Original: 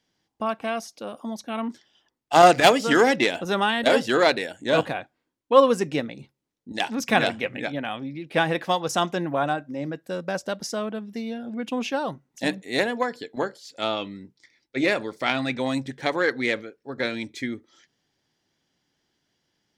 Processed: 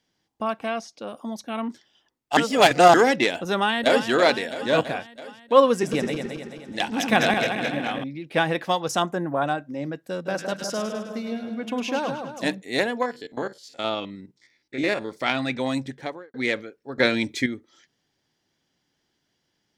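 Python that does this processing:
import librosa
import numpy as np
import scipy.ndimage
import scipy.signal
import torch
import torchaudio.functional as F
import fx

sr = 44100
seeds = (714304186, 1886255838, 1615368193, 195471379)

y = fx.lowpass(x, sr, hz=6500.0, slope=12, at=(0.68, 1.08))
y = fx.echo_throw(y, sr, start_s=3.62, length_s=0.45, ms=330, feedback_pct=65, wet_db=-10.0)
y = fx.reverse_delay_fb(y, sr, ms=108, feedback_pct=70, wet_db=-4.0, at=(5.72, 8.04))
y = fx.band_shelf(y, sr, hz=3600.0, db=-12.0, octaves=1.7, at=(9.02, 9.42))
y = fx.echo_split(y, sr, split_hz=1400.0, low_ms=163, high_ms=103, feedback_pct=52, wet_db=-6.0, at=(10.25, 12.51), fade=0.02)
y = fx.spec_steps(y, sr, hold_ms=50, at=(13.02, 15.09), fade=0.02)
y = fx.studio_fade_out(y, sr, start_s=15.83, length_s=0.51)
y = fx.edit(y, sr, fx.reverse_span(start_s=2.37, length_s=0.57),
    fx.clip_gain(start_s=16.98, length_s=0.48, db=7.0), tone=tone)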